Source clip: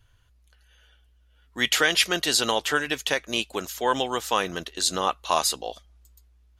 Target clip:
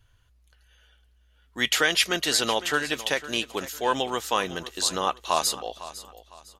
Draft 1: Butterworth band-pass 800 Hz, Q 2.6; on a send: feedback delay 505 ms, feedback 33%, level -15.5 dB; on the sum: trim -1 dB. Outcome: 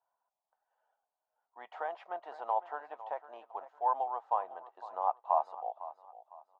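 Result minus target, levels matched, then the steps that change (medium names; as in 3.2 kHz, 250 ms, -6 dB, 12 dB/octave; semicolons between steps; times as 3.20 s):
1 kHz band +7.5 dB
remove: Butterworth band-pass 800 Hz, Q 2.6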